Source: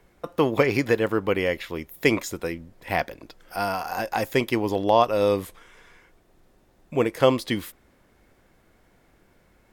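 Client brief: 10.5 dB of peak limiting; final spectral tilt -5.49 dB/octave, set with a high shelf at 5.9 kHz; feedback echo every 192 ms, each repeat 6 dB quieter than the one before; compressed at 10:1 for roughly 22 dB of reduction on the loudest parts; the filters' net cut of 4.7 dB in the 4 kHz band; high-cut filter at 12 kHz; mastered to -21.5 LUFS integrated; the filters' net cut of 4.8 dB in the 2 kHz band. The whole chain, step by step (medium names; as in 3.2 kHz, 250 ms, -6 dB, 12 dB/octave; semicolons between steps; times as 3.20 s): low-pass 12 kHz; peaking EQ 2 kHz -4.5 dB; peaking EQ 4 kHz -3 dB; treble shelf 5.9 kHz -4.5 dB; compression 10:1, threshold -36 dBFS; peak limiter -34 dBFS; feedback delay 192 ms, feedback 50%, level -6 dB; trim +23.5 dB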